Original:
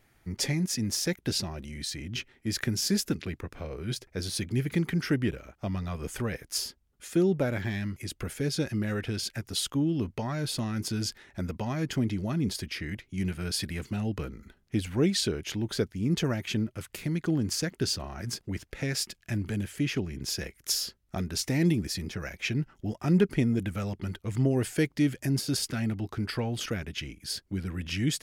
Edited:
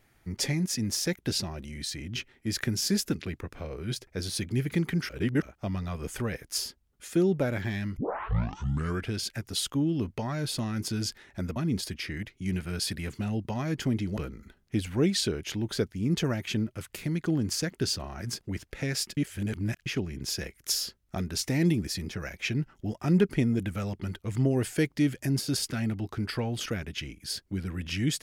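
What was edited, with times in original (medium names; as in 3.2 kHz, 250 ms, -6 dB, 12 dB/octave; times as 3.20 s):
5.09–5.42 s: reverse
7.97 s: tape start 1.13 s
11.56–12.28 s: move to 14.17 s
19.17–19.86 s: reverse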